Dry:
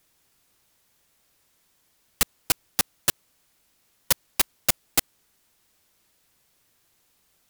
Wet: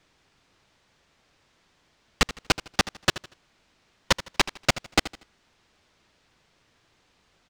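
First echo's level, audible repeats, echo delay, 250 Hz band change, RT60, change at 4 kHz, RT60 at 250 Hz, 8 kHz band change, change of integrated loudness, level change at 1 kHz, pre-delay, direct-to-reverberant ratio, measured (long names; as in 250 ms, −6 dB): −15.5 dB, 2, 79 ms, +7.5 dB, no reverb audible, +3.5 dB, no reverb audible, −5.5 dB, −1.0 dB, +7.0 dB, no reverb audible, no reverb audible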